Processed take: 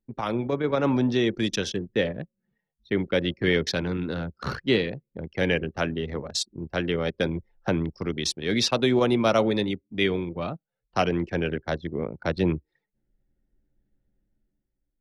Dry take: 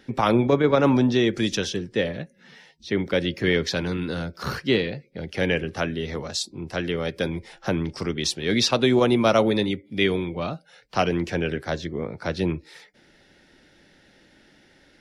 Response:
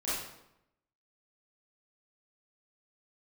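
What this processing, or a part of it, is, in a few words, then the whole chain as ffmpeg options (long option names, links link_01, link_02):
voice memo with heavy noise removal: -af "anlmdn=39.8,dynaudnorm=framelen=180:gausssize=9:maxgain=11.5dB,volume=-8.5dB"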